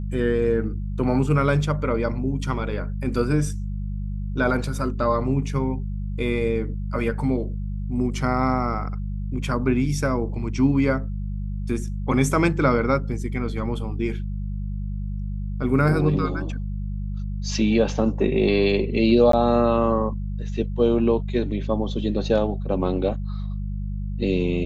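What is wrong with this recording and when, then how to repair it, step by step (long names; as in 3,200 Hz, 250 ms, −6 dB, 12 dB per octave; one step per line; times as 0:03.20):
mains hum 50 Hz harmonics 4 −28 dBFS
0:19.32–0:19.33: drop-out 13 ms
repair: hum removal 50 Hz, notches 4
repair the gap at 0:19.32, 13 ms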